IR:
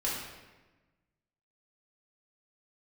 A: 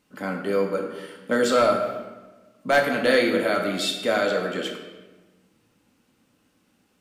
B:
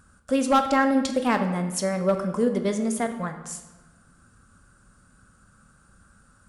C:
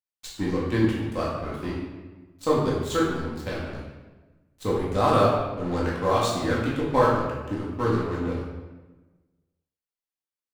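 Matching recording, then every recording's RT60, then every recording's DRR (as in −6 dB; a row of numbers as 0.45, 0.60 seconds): C; 1.2, 1.2, 1.2 seconds; 1.5, 6.0, −6.5 decibels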